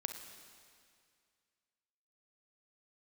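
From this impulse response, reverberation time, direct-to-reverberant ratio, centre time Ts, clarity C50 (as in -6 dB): 2.2 s, 6.0 dB, 36 ms, 6.5 dB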